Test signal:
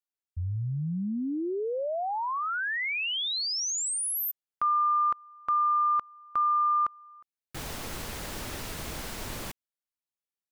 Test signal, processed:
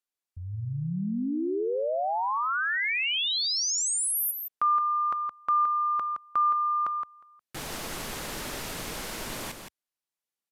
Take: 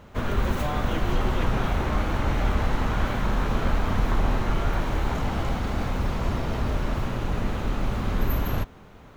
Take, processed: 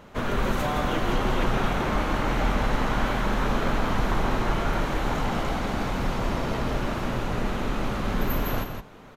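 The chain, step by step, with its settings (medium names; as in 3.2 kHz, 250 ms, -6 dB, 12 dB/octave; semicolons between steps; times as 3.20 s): peaking EQ 74 Hz -9 dB 0.76 oct; on a send: delay 168 ms -7 dB; on the sum: resampled via 32 kHz; bass shelf 140 Hz -4 dB; trim +2 dB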